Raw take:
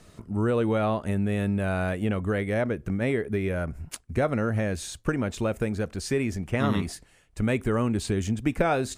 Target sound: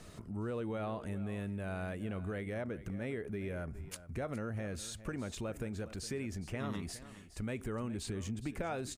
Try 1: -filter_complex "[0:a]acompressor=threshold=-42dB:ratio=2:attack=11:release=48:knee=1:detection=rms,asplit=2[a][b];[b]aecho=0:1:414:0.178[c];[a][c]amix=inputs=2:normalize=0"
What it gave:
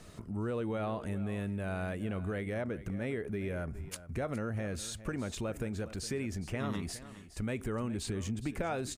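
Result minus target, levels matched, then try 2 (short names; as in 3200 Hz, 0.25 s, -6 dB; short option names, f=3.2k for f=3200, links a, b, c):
compressor: peak gain reduction -3 dB
-filter_complex "[0:a]acompressor=threshold=-48.5dB:ratio=2:attack=11:release=48:knee=1:detection=rms,asplit=2[a][b];[b]aecho=0:1:414:0.178[c];[a][c]amix=inputs=2:normalize=0"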